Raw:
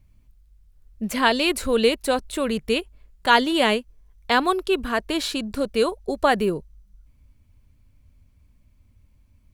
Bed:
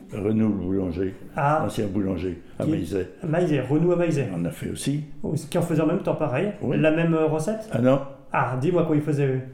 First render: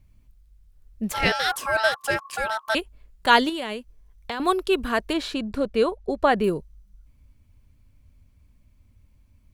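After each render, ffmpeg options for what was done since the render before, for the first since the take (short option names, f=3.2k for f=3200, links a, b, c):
-filter_complex "[0:a]asettb=1/sr,asplit=3[a][b][c];[a]atrim=end=1.124[d];[b]atrim=start=1.12:end=2.75,asetpts=PTS-STARTPTS,afade=t=in:d=0.004:c=qsin,afade=t=out:st=1.626:d=0.004:c=qsin,aeval=exprs='val(0)*sin(2*PI*1100*n/s)':c=same[e];[c]atrim=start=2.746[f];[d][e]acrossfade=d=0.004:c1=hsin:c2=qsin[g];[g][f]acrossfade=d=0.004:c1=qsin:c2=hsin,asettb=1/sr,asplit=3[h][i][j];[h]atrim=end=3.494[k];[i]atrim=start=3.49:end=4.4,asetpts=PTS-STARTPTS,afade=t=in:d=0.004:c=qsin,afade=t=out:st=0.906:d=0.004:c=qsin,acompressor=threshold=-26dB:ratio=10:attack=3.2:release=140:knee=1:detection=peak[l];[j]atrim=start=4.396[m];[k][l]acrossfade=d=0.004:c1=hsin:c2=qsin[n];[n][m]acrossfade=d=0.004:c1=qsin:c2=hsin,asettb=1/sr,asplit=3[o][p][q];[o]atrim=end=5.134[r];[p]atrim=start=5.13:end=6.44,asetpts=PTS-STARTPTS,afade=t=in:d=0.004:c=qsin,afade=t=out:st=1.306:d=0.004:c=qsin,lowpass=f=2.5k:p=1[s];[q]atrim=start=6.436[t];[r][s]acrossfade=d=0.004:c1=hsin:c2=qsin[u];[u][t]acrossfade=d=0.004:c1=qsin:c2=hsin"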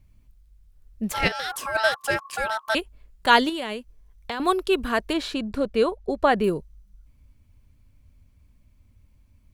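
-filter_complex "[0:a]asplit=3[a][b][c];[a]afade=t=out:st=1.27:d=0.02[d];[b]acompressor=threshold=-25dB:ratio=6:attack=3.2:release=140:knee=1:detection=peak,afade=t=in:st=1.27:d=0.02,afade=t=out:st=1.74:d=0.02[e];[c]afade=t=in:st=1.74:d=0.02[f];[d][e][f]amix=inputs=3:normalize=0"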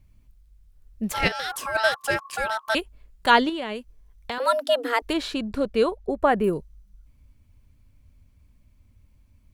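-filter_complex "[0:a]asplit=3[a][b][c];[a]afade=t=out:st=3.3:d=0.02[d];[b]aemphasis=mode=reproduction:type=50fm,afade=t=in:st=3.3:d=0.02,afade=t=out:st=3.74:d=0.02[e];[c]afade=t=in:st=3.74:d=0.02[f];[d][e][f]amix=inputs=3:normalize=0,asettb=1/sr,asplit=3[g][h][i];[g]atrim=end=4.384[j];[h]atrim=start=4.38:end=5.02,asetpts=PTS-STARTPTS,afade=t=in:d=0.004:c=qsin,afade=t=out:st=0.636:d=0.004:c=qsin,afreqshift=240[k];[i]atrim=start=5.016[l];[j][k]acrossfade=d=0.004:c1=hsin:c2=qsin[m];[m][l]acrossfade=d=0.004:c1=qsin:c2=hsin,asettb=1/sr,asplit=3[n][o][p];[n]atrim=end=6.074[q];[o]atrim=start=6.07:end=6.53,asetpts=PTS-STARTPTS,afade=t=in:d=0.004:c=qsin,afade=t=out:st=0.456:d=0.004:c=qsin,equalizer=f=4.4k:w=1.1:g=-12[r];[p]atrim=start=6.526[s];[q][r]acrossfade=d=0.004:c1=hsin:c2=qsin[t];[t][s]acrossfade=d=0.004:c1=qsin:c2=hsin"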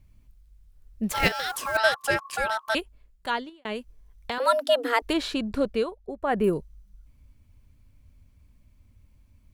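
-filter_complex "[0:a]asettb=1/sr,asplit=3[a][b][c];[a]atrim=end=1.104[d];[b]atrim=start=1.1:end=1.77,asetpts=PTS-STARTPTS,afade=t=in:d=0.004:c=qsin,afade=t=out:st=0.666:d=0.004:c=qsin,acrusher=bits=4:mode=log:mix=0:aa=0.000001[e];[c]atrim=start=1.766[f];[d][e]acrossfade=d=0.004:c1=hsin:c2=qsin[g];[g][f]acrossfade=d=0.004:c1=qsin:c2=hsin,asplit=4[h][i][j][k];[h]atrim=end=3.65,asetpts=PTS-STARTPTS,afade=t=out:st=2.48:d=1.17[l];[i]atrim=start=3.65:end=5.85,asetpts=PTS-STARTPTS,afade=t=in:d=0.004:c=hsin,afade=t=out:st=2:d=0.2:c=qsin:silence=0.354813[m];[j]atrim=start=5.85:end=6.26,asetpts=PTS-STARTPTS,volume=-9dB[n];[k]atrim=start=6.26,asetpts=PTS-STARTPTS,afade=t=in:d=0.2:c=qsin:silence=0.354813[o];[l][m][n][o]concat=n=4:v=0:a=1"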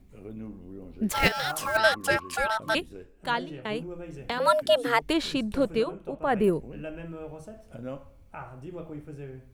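-filter_complex "[1:a]volume=-18.5dB[a];[0:a][a]amix=inputs=2:normalize=0"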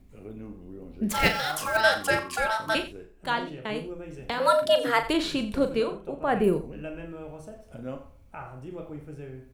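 -filter_complex "[0:a]asplit=2[a][b];[b]adelay=39,volume=-9dB[c];[a][c]amix=inputs=2:normalize=0,aecho=1:1:88:0.188"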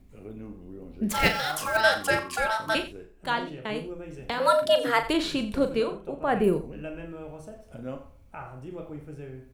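-af anull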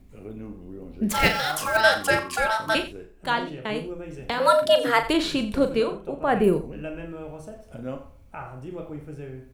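-af "volume=3dB,alimiter=limit=-3dB:level=0:latency=1"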